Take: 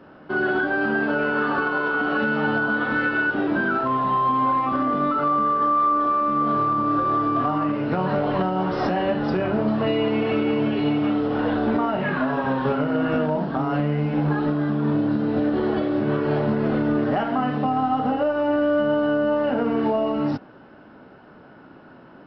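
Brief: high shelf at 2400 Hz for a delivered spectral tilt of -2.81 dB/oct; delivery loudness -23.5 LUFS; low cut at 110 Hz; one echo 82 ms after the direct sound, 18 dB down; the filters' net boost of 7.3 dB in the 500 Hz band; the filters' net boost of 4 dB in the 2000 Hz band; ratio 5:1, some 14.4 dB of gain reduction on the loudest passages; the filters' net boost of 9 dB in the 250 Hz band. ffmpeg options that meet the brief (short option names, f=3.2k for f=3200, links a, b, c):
-af "highpass=110,equalizer=f=250:t=o:g=9,equalizer=f=500:t=o:g=6.5,equalizer=f=2k:t=o:g=7.5,highshelf=f=2.4k:g=-4,acompressor=threshold=-27dB:ratio=5,aecho=1:1:82:0.126,volume=4.5dB"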